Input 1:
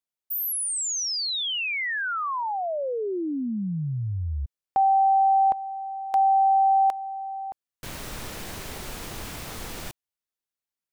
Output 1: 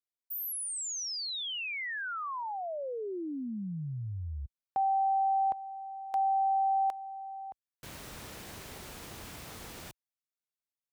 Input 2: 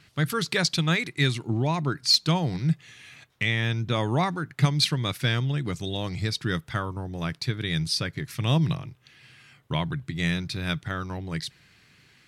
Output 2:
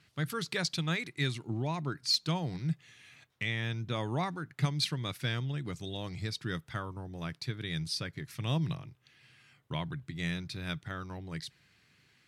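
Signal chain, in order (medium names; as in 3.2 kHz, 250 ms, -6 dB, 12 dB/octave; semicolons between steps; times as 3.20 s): high-pass 46 Hz; trim -8.5 dB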